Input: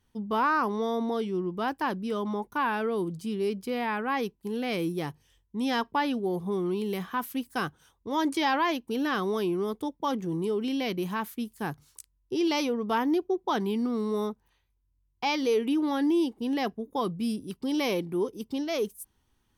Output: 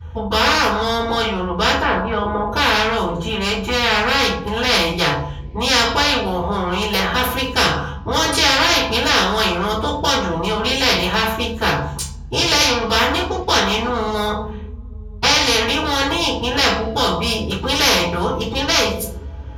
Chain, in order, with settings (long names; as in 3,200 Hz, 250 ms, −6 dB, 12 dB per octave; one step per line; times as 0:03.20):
adaptive Wiener filter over 9 samples
0:01.81–0:02.50: low-pass filter 1,500 Hz 12 dB per octave
convolution reverb RT60 0.35 s, pre-delay 3 ms, DRR −18 dB
every bin compressed towards the loudest bin 4 to 1
level −7 dB